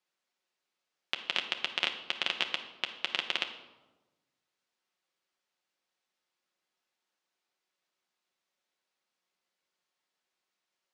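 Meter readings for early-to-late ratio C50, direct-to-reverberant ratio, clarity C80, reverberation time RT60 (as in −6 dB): 9.0 dB, 3.0 dB, 11.5 dB, 1.1 s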